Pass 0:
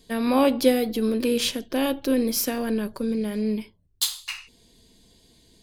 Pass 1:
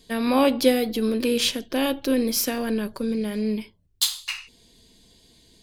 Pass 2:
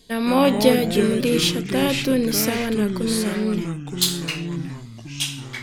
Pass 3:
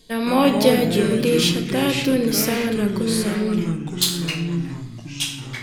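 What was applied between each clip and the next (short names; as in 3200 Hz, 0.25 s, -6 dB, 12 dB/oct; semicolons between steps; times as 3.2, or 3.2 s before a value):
bell 3400 Hz +3 dB 2.5 oct
echoes that change speed 0.142 s, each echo -4 st, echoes 3, each echo -6 dB; gain +2 dB
reverb RT60 1.0 s, pre-delay 6 ms, DRR 7 dB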